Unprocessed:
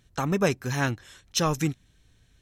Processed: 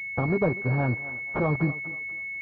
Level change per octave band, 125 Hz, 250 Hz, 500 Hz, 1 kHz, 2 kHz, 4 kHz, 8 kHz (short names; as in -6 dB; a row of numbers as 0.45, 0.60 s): +2.5 dB, +0.5 dB, +0.5 dB, -2.5 dB, +5.0 dB, under -25 dB, under -35 dB